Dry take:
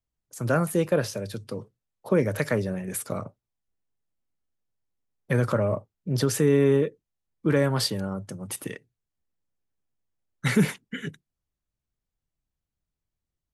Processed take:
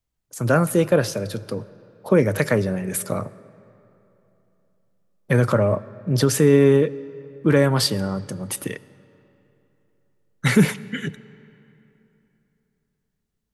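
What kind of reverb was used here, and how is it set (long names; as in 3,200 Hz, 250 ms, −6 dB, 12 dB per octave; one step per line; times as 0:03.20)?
comb and all-pass reverb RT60 3.2 s, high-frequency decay 0.65×, pre-delay 35 ms, DRR 19.5 dB
level +5.5 dB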